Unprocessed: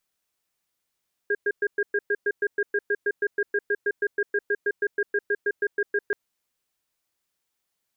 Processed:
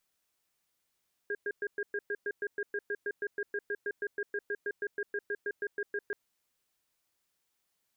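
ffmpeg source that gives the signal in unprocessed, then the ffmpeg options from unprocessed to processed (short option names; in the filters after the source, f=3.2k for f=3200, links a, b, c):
-f lavfi -i "aevalsrc='0.0708*(sin(2*PI*410*t)+sin(2*PI*1620*t))*clip(min(mod(t,0.16),0.05-mod(t,0.16))/0.005,0,1)':d=4.83:s=44100"
-af "alimiter=level_in=3.5dB:limit=-24dB:level=0:latency=1:release=15,volume=-3.5dB"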